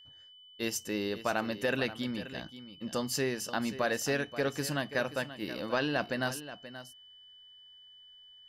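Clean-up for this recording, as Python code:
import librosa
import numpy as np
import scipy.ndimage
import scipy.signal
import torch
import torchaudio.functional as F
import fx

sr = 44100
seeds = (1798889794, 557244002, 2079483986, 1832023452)

y = fx.notch(x, sr, hz=3000.0, q=30.0)
y = fx.fix_echo_inverse(y, sr, delay_ms=530, level_db=-13.5)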